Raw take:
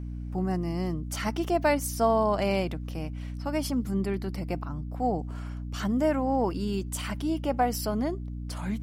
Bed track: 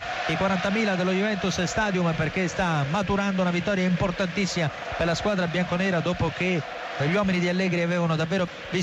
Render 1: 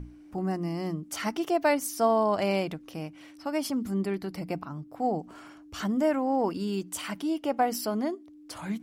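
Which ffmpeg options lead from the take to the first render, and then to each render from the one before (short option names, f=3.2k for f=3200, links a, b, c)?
-af "bandreject=f=60:t=h:w=6,bandreject=f=120:t=h:w=6,bandreject=f=180:t=h:w=6,bandreject=f=240:t=h:w=6"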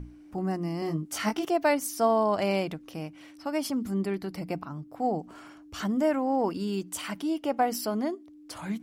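-filter_complex "[0:a]asettb=1/sr,asplit=3[a][b][c];[a]atrim=end=0.804[d];[b]atrim=start=0.8:end=1.45,asetpts=PTS-STARTPTS,afade=t=in:d=0.004:c=qsin,afade=t=out:st=0.646:d=0.004:c=qsin,asplit=2[e][f];[f]adelay=19,volume=-3dB[g];[e][g]amix=inputs=2:normalize=0,atrim=end_sample=28665[h];[c]atrim=start=1.446[i];[d][h]acrossfade=d=0.004:c1=hsin:c2=qsin[j];[j][i]acrossfade=d=0.004:c1=qsin:c2=hsin"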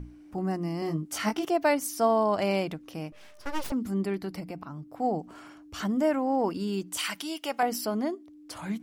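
-filter_complex "[0:a]asettb=1/sr,asplit=3[a][b][c];[a]atrim=end=3.124[d];[b]atrim=start=3.12:end=3.72,asetpts=PTS-STARTPTS,afade=t=in:d=0.004:c=qsin,afade=t=out:st=0.596:d=0.004:c=qsin,aeval=exprs='abs(val(0))':c=same[e];[c]atrim=start=3.716[f];[d][e]acrossfade=d=0.004:c1=hsin:c2=qsin[g];[g][f]acrossfade=d=0.004:c1=qsin:c2=hsin,asettb=1/sr,asplit=3[h][i][j];[h]atrim=end=4.404[k];[i]atrim=start=4.4:end=4.91,asetpts=PTS-STARTPTS,afade=t=in:d=0.004:c=qsin,afade=t=out:st=0.506:d=0.004:c=qsin,acompressor=threshold=-36dB:ratio=2.5:attack=3.2:release=140:knee=1:detection=peak[l];[j]atrim=start=4.906[m];[k][l]acrossfade=d=0.004:c1=hsin:c2=qsin[n];[n][m]acrossfade=d=0.004:c1=qsin:c2=hsin,asettb=1/sr,asplit=3[o][p][q];[o]atrim=end=6.974[r];[p]atrim=start=6.97:end=7.63,asetpts=PTS-STARTPTS,afade=t=in:d=0.004:c=qsin,afade=t=out:st=0.656:d=0.004:c=qsin,tiltshelf=f=970:g=-9.5[s];[q]atrim=start=7.626[t];[r][s]acrossfade=d=0.004:c1=hsin:c2=qsin[u];[u][t]acrossfade=d=0.004:c1=qsin:c2=hsin"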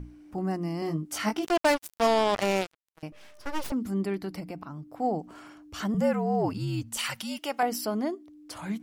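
-filter_complex "[0:a]asettb=1/sr,asplit=3[a][b][c];[a]atrim=end=1.464[d];[b]atrim=start=1.46:end=3.03,asetpts=PTS-STARTPTS,afade=t=in:d=0.004:c=qsin,afade=t=out:st=1.566:d=0.004:c=qsin,acrusher=bits=3:mix=0:aa=0.5[e];[c]atrim=start=3.026[f];[d][e]acrossfade=d=0.004:c1=hsin:c2=qsin[g];[g][f]acrossfade=d=0.004:c1=qsin:c2=hsin,asettb=1/sr,asplit=3[h][i][j];[h]atrim=end=5.944[k];[i]atrim=start=5.94:end=7.39,asetpts=PTS-STARTPTS,afade=t=in:d=0.004:c=qsin,afade=t=out:st=1.446:d=0.004:c=qsin,afreqshift=-70[l];[j]atrim=start=7.386[m];[k][l]acrossfade=d=0.004:c1=hsin:c2=qsin[n];[n][m]acrossfade=d=0.004:c1=qsin:c2=hsin"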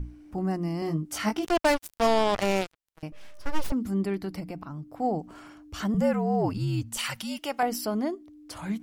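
-af "lowshelf=f=87:g=11"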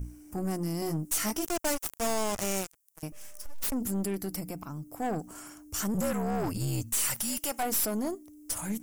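-af "aexciter=amount=11.7:drive=2:freq=5.8k,aeval=exprs='(tanh(20*val(0)+0.4)-tanh(0.4))/20':c=same"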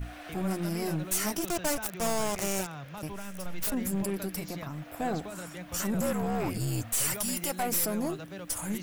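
-filter_complex "[1:a]volume=-17.5dB[a];[0:a][a]amix=inputs=2:normalize=0"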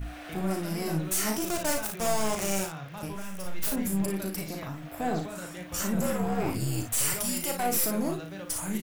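-af "aecho=1:1:37|56:0.473|0.447"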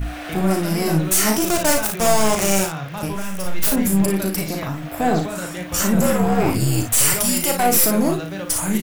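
-af "volume=11dB"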